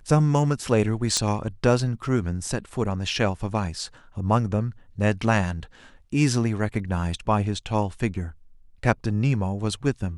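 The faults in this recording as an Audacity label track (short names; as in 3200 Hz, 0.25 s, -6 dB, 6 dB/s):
1.170000	1.170000	pop -9 dBFS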